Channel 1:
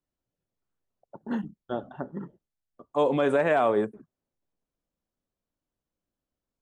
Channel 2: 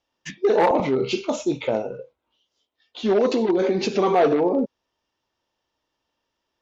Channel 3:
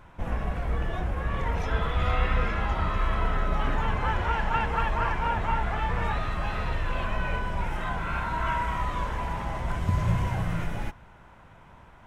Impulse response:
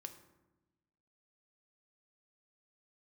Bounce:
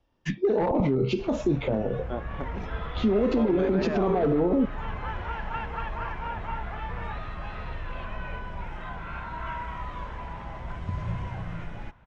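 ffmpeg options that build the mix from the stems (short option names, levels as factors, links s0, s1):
-filter_complex "[0:a]lowpass=f=3600:w=0.5412,lowpass=f=3600:w=1.3066,adelay=400,volume=0.75[s0];[1:a]aemphasis=mode=reproduction:type=riaa,acrossover=split=220[s1][s2];[s2]acompressor=threshold=0.126:ratio=6[s3];[s1][s3]amix=inputs=2:normalize=0,volume=1.33[s4];[2:a]lowpass=4500,adelay=1000,volume=0.473[s5];[s0][s4][s5]amix=inputs=3:normalize=0,alimiter=limit=0.168:level=0:latency=1:release=208"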